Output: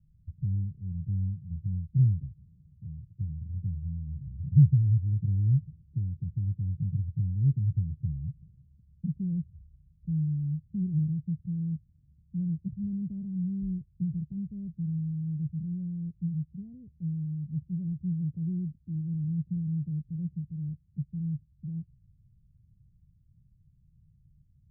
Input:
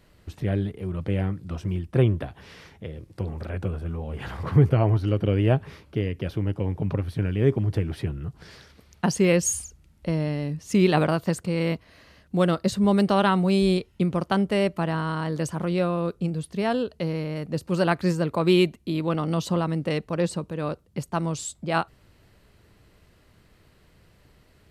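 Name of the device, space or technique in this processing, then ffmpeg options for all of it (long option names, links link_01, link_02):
the neighbour's flat through the wall: -af "lowpass=frequency=150:width=0.5412,lowpass=frequency=150:width=1.3066,equalizer=frequency=150:width_type=o:width=0.62:gain=6.5,volume=-3.5dB"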